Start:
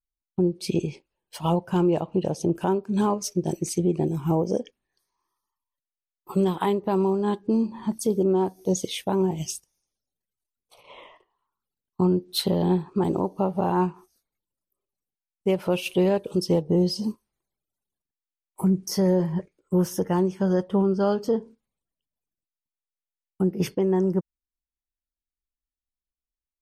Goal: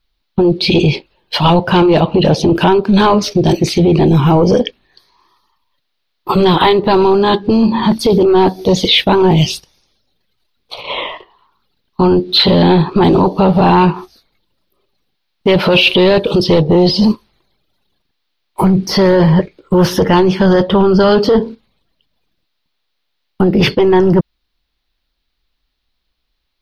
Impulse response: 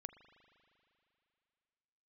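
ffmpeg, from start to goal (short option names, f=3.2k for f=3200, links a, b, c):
-filter_complex "[0:a]apsyclip=29.5dB,highshelf=f=5.6k:t=q:w=3:g=-11.5,acrossover=split=3500[a][b];[b]acompressor=threshold=-15dB:ratio=4:attack=1:release=60[c];[a][c]amix=inputs=2:normalize=0,volume=-5.5dB"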